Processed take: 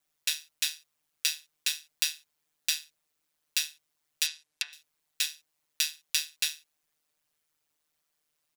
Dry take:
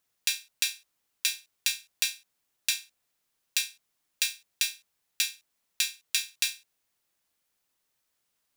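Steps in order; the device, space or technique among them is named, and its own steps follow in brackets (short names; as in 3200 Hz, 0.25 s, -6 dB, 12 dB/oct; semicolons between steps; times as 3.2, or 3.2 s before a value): ring-modulated robot voice (ring modulator 77 Hz; comb 6.7 ms, depth 68%); 4.26–4.73 treble ducked by the level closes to 1300 Hz, closed at -25 dBFS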